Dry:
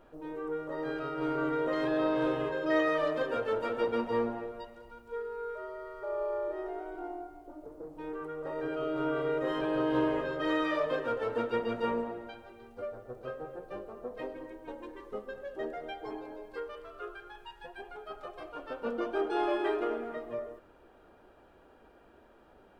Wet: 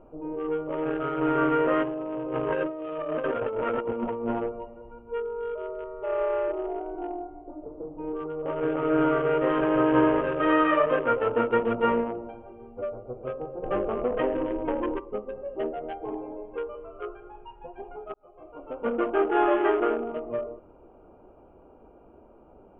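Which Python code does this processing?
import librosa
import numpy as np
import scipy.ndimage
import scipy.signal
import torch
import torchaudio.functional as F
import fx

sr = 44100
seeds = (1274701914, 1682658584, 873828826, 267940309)

y = fx.over_compress(x, sr, threshold_db=-35.0, ratio=-1.0, at=(1.82, 4.48), fade=0.02)
y = fx.echo_throw(y, sr, start_s=5.0, length_s=0.44, ms=400, feedback_pct=25, wet_db=-9.0)
y = fx.echo_throw(y, sr, start_s=8.19, length_s=0.56, ms=290, feedback_pct=60, wet_db=-2.5)
y = fx.env_flatten(y, sr, amount_pct=50, at=(13.62, 14.98), fade=0.02)
y = fx.edit(y, sr, fx.fade_in_span(start_s=18.14, length_s=0.78), tone=tone)
y = fx.wiener(y, sr, points=25)
y = scipy.signal.sosfilt(scipy.signal.ellip(4, 1.0, 40, 3000.0, 'lowpass', fs=sr, output='sos'), y)
y = fx.dynamic_eq(y, sr, hz=1300.0, q=2.4, threshold_db=-53.0, ratio=4.0, max_db=5)
y = F.gain(torch.from_numpy(y), 8.5).numpy()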